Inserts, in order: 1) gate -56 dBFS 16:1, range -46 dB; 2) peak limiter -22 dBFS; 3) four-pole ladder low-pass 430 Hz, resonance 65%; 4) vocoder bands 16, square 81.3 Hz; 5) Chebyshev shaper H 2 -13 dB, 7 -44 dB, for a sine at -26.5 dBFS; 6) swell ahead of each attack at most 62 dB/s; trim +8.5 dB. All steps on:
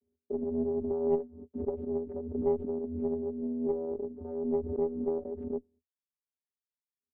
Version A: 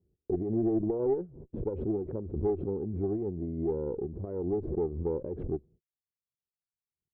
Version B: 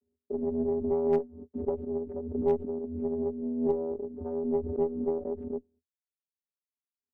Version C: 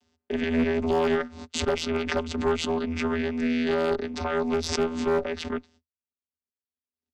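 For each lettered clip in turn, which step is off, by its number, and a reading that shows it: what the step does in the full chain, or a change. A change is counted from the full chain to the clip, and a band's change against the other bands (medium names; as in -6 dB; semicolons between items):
4, 125 Hz band +10.0 dB; 2, 1 kHz band +2.0 dB; 3, 1 kHz band +7.5 dB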